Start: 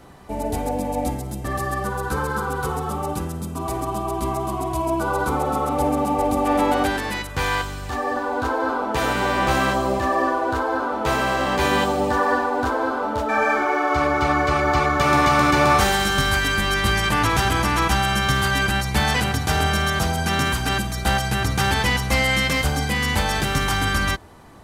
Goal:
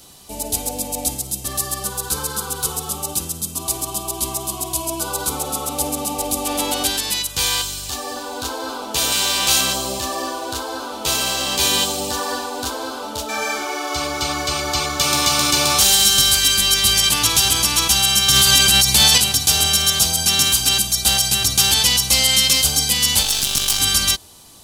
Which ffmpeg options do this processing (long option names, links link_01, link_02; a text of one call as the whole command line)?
ffmpeg -i in.wav -filter_complex "[0:a]asettb=1/sr,asplit=3[link_01][link_02][link_03];[link_01]atrim=end=9.124[link_04];[link_02]atrim=start=9.12:end=9.61,asetpts=PTS-STARTPTS,afade=type=in:duration=0.004:curve=qsin,afade=type=out:start_time=0.486:duration=0.004:curve=qsin,tiltshelf=frequency=970:gain=-3.5[link_05];[link_03]atrim=start=9.606[link_06];[link_04][link_05]acrossfade=duration=0.004:curve1=hsin:curve2=qsin[link_07];[link_07][link_06]acrossfade=duration=0.004:curve1=qsin:curve2=hsin,asettb=1/sr,asplit=3[link_08][link_09][link_10];[link_08]atrim=end=18.284[link_11];[link_09]atrim=start=18.28:end=19.18,asetpts=PTS-STARTPTS,afade=type=in:duration=0.004:curve=qsin,afade=type=out:start_time=0.896:duration=0.004:curve=qsin,acontrast=64[link_12];[link_10]atrim=start=19.176[link_13];[link_11][link_12]acrossfade=duration=0.004:curve1=hsin:curve2=qsin[link_14];[link_14][link_13]acrossfade=duration=0.004:curve1=qsin:curve2=hsin,asettb=1/sr,asplit=3[link_15][link_16][link_17];[link_15]atrim=end=23.234[link_18];[link_16]atrim=start=23.23:end=23.8,asetpts=PTS-STARTPTS,afade=type=in:duration=0.004:curve=qsin,afade=type=out:start_time=0.566:duration=0.004:curve=qsin,aeval=exprs='max(val(0),0)':channel_layout=same[link_19];[link_17]atrim=start=23.796[link_20];[link_18][link_19]acrossfade=duration=0.004:curve1=hsin:curve2=qsin[link_21];[link_21][link_20]acrossfade=duration=0.004:curve1=qsin:curve2=hsin,aexciter=amount=10.9:drive=2.7:freq=2800,alimiter=level_in=-4.5dB:limit=-1dB:release=50:level=0:latency=1,volume=-1dB" out.wav